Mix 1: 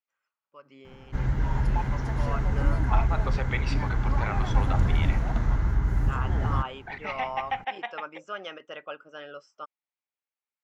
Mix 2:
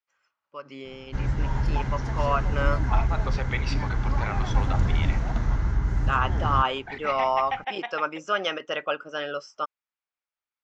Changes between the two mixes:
first voice +10.5 dB
master: add low-pass with resonance 6,100 Hz, resonance Q 1.6

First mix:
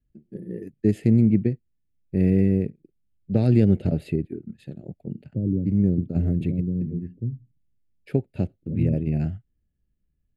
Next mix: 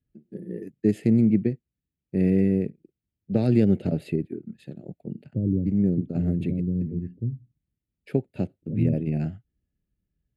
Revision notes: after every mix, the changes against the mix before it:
first voice: add high-pass filter 140 Hz 12 dB per octave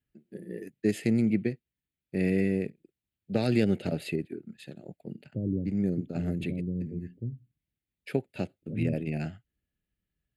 master: add tilt shelving filter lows −7.5 dB, about 680 Hz

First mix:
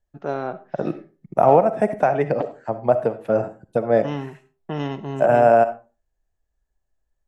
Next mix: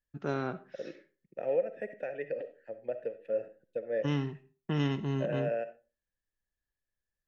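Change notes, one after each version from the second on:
second voice: add formant filter e
master: add parametric band 690 Hz −12.5 dB 1.3 octaves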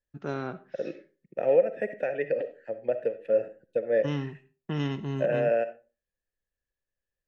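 second voice +8.0 dB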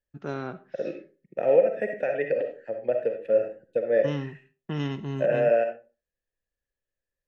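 second voice: send +8.0 dB

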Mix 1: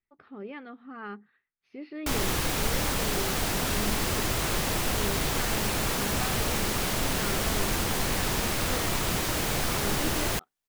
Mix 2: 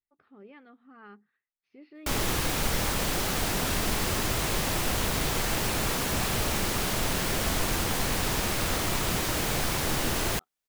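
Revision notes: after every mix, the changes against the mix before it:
speech −10.0 dB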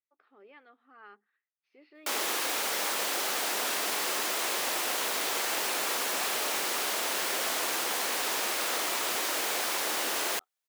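master: add Bessel high-pass filter 500 Hz, order 4

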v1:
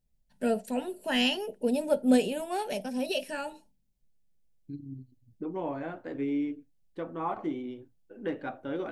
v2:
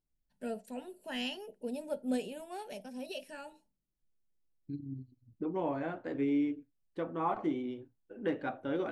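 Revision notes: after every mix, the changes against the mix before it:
first voice −11.0 dB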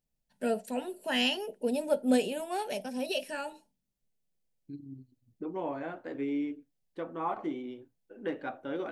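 first voice +10.0 dB
master: add low-shelf EQ 140 Hz −11.5 dB

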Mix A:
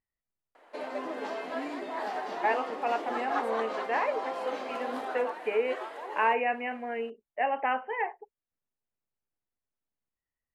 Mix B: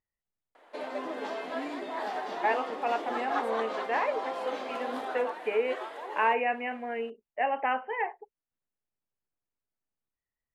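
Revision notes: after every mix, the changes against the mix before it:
master: add parametric band 3,500 Hz +4.5 dB 0.22 octaves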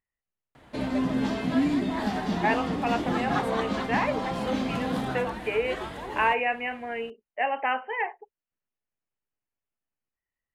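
background: remove high-pass filter 430 Hz 24 dB per octave
master: add high-shelf EQ 2,200 Hz +9.5 dB

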